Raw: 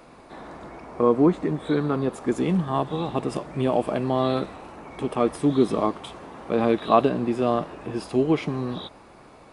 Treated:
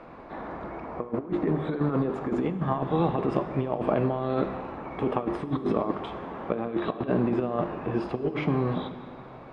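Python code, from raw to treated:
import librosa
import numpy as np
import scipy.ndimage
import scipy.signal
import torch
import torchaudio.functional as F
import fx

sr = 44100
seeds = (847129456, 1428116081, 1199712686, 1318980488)

y = scipy.signal.sosfilt(scipy.signal.butter(2, 2100.0, 'lowpass', fs=sr, output='sos'), x)
y = fx.hum_notches(y, sr, base_hz=50, count=8)
y = fx.over_compress(y, sr, threshold_db=-26.0, ratio=-0.5)
y = fx.rev_plate(y, sr, seeds[0], rt60_s=2.4, hf_ratio=0.85, predelay_ms=0, drr_db=11.0)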